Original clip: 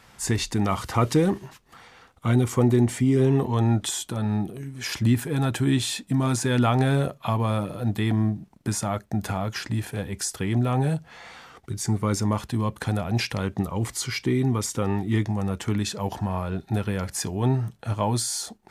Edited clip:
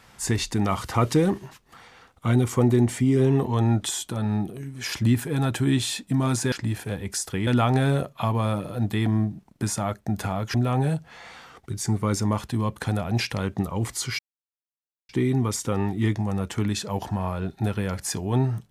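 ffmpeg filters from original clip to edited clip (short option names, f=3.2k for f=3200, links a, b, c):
-filter_complex "[0:a]asplit=5[a][b][c][d][e];[a]atrim=end=6.522[f];[b]atrim=start=9.588:end=10.542[g];[c]atrim=start=6.518:end=9.592[h];[d]atrim=start=10.538:end=14.19,asetpts=PTS-STARTPTS,afade=t=out:st=3.648:d=0.004:c=hsin,apad=pad_dur=0.9[i];[e]atrim=start=14.19,asetpts=PTS-STARTPTS,afade=t=in:d=0.004:c=hsin[j];[f][g]acrossfade=d=0.004:c1=hsin:c2=hsin[k];[k][h]acrossfade=d=0.004:c1=hsin:c2=hsin[l];[i][j]concat=n=2:v=0:a=1[m];[l][m]acrossfade=d=0.004:c1=hsin:c2=hsin"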